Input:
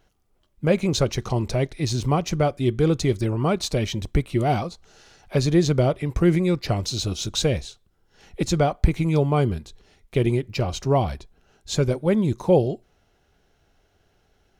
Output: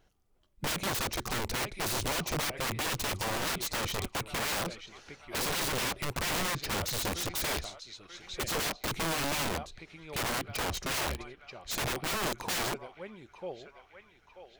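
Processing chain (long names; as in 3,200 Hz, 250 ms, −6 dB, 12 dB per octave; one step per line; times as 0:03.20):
feedback echo with a band-pass in the loop 936 ms, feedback 62%, band-pass 1,900 Hz, level −9.5 dB
wrap-around overflow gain 22.5 dB
level −4.5 dB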